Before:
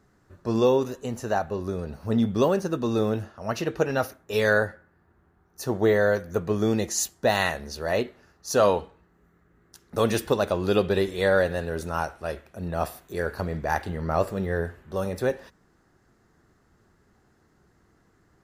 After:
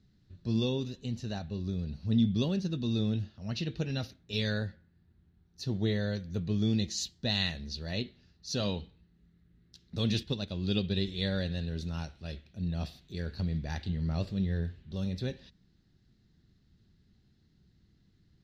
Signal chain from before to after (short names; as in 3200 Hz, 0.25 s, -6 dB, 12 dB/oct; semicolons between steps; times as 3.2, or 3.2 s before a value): EQ curve 190 Hz 0 dB, 460 Hz -16 dB, 1200 Hz -22 dB, 4000 Hz +4 dB, 10000 Hz -25 dB; 10.23–11.02 upward expander 1.5:1, over -41 dBFS